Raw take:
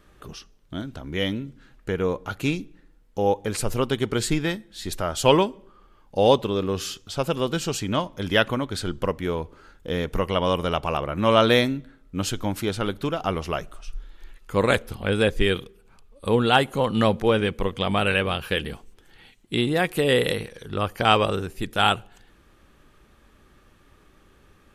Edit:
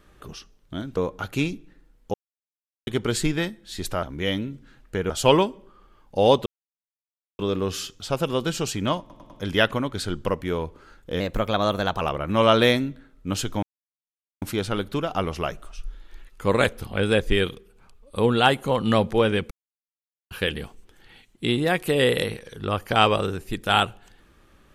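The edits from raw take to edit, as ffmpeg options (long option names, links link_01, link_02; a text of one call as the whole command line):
ffmpeg -i in.wav -filter_complex "[0:a]asplit=15[link_01][link_02][link_03][link_04][link_05][link_06][link_07][link_08][link_09][link_10][link_11][link_12][link_13][link_14][link_15];[link_01]atrim=end=0.972[link_16];[link_02]atrim=start=2.038:end=3.21,asetpts=PTS-STARTPTS,afade=type=out:start_time=1.168:duration=0.004:curve=hsin[link_17];[link_03]atrim=start=3.21:end=3.94,asetpts=PTS-STARTPTS,volume=0[link_18];[link_04]atrim=start=3.94:end=5.102,asetpts=PTS-STARTPTS,afade=type=in:duration=0.004:curve=hsin[link_19];[link_05]atrim=start=0.968:end=2.042[link_20];[link_06]atrim=start=5.098:end=6.46,asetpts=PTS-STARTPTS,afade=type=out:start_time=1.358:duration=0.004:curve=hsin,apad=pad_dur=0.93[link_21];[link_07]atrim=start=6.46:end=8.172,asetpts=PTS-STARTPTS,afade=type=in:duration=0.004:curve=hsin[link_22];[link_08]atrim=start=8.068:end=8.172[link_23];[link_09]atrim=start=8.068:end=8.172[link_24];[link_10]atrim=start=8.068:end=9.974[link_25];[link_11]atrim=start=9.97:end=10.89,asetpts=PTS-STARTPTS,asetrate=50274,aresample=44100,atrim=end_sample=35589,asetpts=PTS-STARTPTS[link_26];[link_12]atrim=start=10.886:end=12.51,asetpts=PTS-STARTPTS,afade=type=out:start_time=1.62:duration=0.004:curve=hsin,apad=pad_dur=0.79[link_27];[link_13]atrim=start=12.51:end=17.6,asetpts=PTS-STARTPTS,afade=type=in:duration=0.004:curve=hsin,afade=type=out:start_time=5.086:duration=0.004:curve=hsin[link_28];[link_14]atrim=start=17.6:end=18.4,asetpts=PTS-STARTPTS,volume=0[link_29];[link_15]atrim=start=18.4,asetpts=PTS-STARTPTS,afade=type=in:duration=0.004:curve=hsin[link_30];[link_17][link_18][link_19]concat=n=3:v=0:a=1[link_31];[link_16][link_31]acrossfade=duration=0.004:curve1=hsin:curve2=hsin[link_32];[link_32][link_20]acrossfade=duration=0.004:curve1=hsin:curve2=hsin[link_33];[link_21][link_22]concat=n=2:v=0:a=1[link_34];[link_33][link_34]acrossfade=duration=0.004:curve1=hsin:curve2=hsin[link_35];[link_35][link_23]acrossfade=duration=0.004:curve1=hsin:curve2=hsin[link_36];[link_36][link_24]acrossfade=duration=0.004:curve1=hsin:curve2=hsin[link_37];[link_37][link_25]acrossfade=duration=0.004:curve1=hsin:curve2=hsin[link_38];[link_38][link_26]acrossfade=duration=0.004:curve1=hsin:curve2=hsin[link_39];[link_27][link_28][link_29][link_30]concat=n=4:v=0:a=1[link_40];[link_39][link_40]acrossfade=duration=0.004:curve1=hsin:curve2=hsin" out.wav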